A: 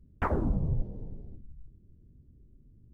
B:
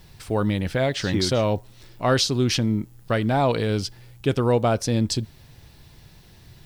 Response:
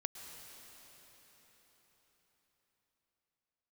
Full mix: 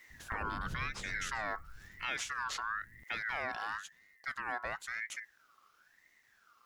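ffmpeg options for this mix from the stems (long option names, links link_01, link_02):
-filter_complex "[0:a]acompressor=threshold=-31dB:ratio=6,adelay=100,volume=-2dB[link_01];[1:a]aeval=exprs='val(0)*sin(2*PI*1600*n/s+1600*0.25/0.98*sin(2*PI*0.98*n/s))':channel_layout=same,volume=-7.5dB,afade=type=out:start_time=3.59:duration=0.23:silence=0.375837[link_02];[link_01][link_02]amix=inputs=2:normalize=0,alimiter=level_in=2.5dB:limit=-24dB:level=0:latency=1:release=358,volume=-2.5dB"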